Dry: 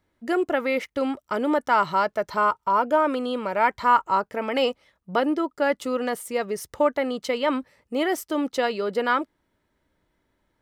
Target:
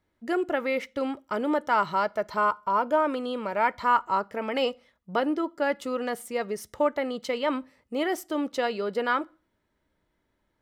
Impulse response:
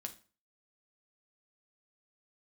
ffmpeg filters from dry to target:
-filter_complex "[0:a]asplit=2[s0][s1];[1:a]atrim=start_sample=2205,lowpass=8000[s2];[s1][s2]afir=irnorm=-1:irlink=0,volume=0.355[s3];[s0][s3]amix=inputs=2:normalize=0,volume=0.562"

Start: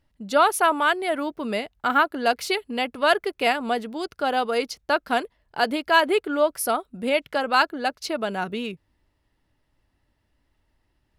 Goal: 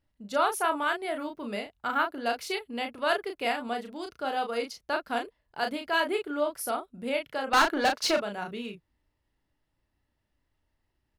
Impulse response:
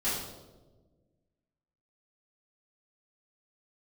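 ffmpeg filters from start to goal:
-filter_complex "[0:a]asettb=1/sr,asplit=3[s0][s1][s2];[s0]atrim=end=7.534[s3];[s1]atrim=start=7.53:end=8.18,asetpts=PTS-STARTPTS,afade=t=in:d=0.004:c=qsin,afade=t=out:st=0.646:d=0.004:c=qsin,asplit=2[s4][s5];[s5]highpass=f=720:p=1,volume=15.8,asoftclip=type=tanh:threshold=0.447[s6];[s4][s6]amix=inputs=2:normalize=0,lowpass=f=5500:p=1,volume=0.501[s7];[s2]atrim=start=8.176[s8];[s3][s7]acrossfade=d=0.004:c1=hsin:c2=qsin[s9];[s9][s8]acrossfade=d=0.004:c1=qsin:c2=hsin,asplit=2[s10][s11];[s11]adelay=34,volume=0.562[s12];[s10][s12]amix=inputs=2:normalize=0,volume=0.376"

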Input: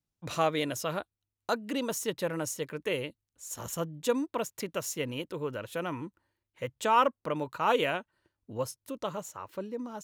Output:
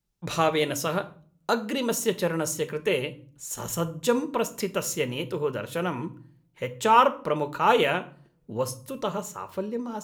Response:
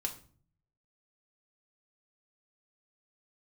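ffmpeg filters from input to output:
-filter_complex "[0:a]asplit=2[s0][s1];[1:a]atrim=start_sample=2205,lowshelf=f=150:g=5[s2];[s1][s2]afir=irnorm=-1:irlink=0,volume=0.944[s3];[s0][s3]amix=inputs=2:normalize=0"

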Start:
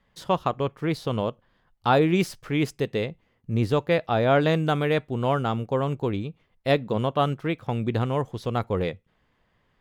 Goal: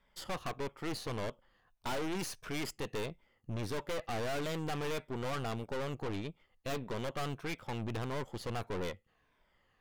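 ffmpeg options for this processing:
-af "afftfilt=real='re*pow(10,8/40*sin(2*PI*(1.6*log(max(b,1)*sr/1024/100)/log(2)-(-1.6)*(pts-256)/sr)))':imag='im*pow(10,8/40*sin(2*PI*(1.6*log(max(b,1)*sr/1024/100)/log(2)-(-1.6)*(pts-256)/sr)))':win_size=1024:overlap=0.75,equalizer=f=140:w=0.5:g=-7.5,bandreject=f=3900:w=20,aeval=exprs='(tanh(63.1*val(0)+0.75)-tanh(0.75))/63.1':c=same,volume=1.12"

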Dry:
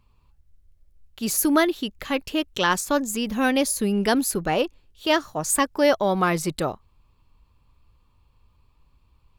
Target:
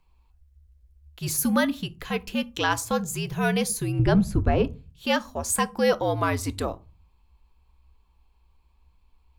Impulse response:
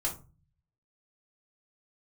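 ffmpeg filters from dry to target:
-filter_complex "[0:a]asettb=1/sr,asplit=3[s0][s1][s2];[s0]atrim=end=3.994[s3];[s1]atrim=start=3.99:end=4.65,asetpts=PTS-STARTPTS,afade=t=in:d=0.004:c=qsin,afade=t=out:st=0.656:d=0.004:c=qsin,aemphasis=mode=reproduction:type=riaa[s4];[s2]atrim=start=4.646[s5];[s3][s4]acrossfade=d=0.004:c1=hsin:c2=qsin[s6];[s6][s5]acrossfade=d=0.004:c1=qsin:c2=hsin,afreqshift=-74,asplit=2[s7][s8];[1:a]atrim=start_sample=2205[s9];[s8][s9]afir=irnorm=-1:irlink=0,volume=0.158[s10];[s7][s10]amix=inputs=2:normalize=0,volume=0.631"

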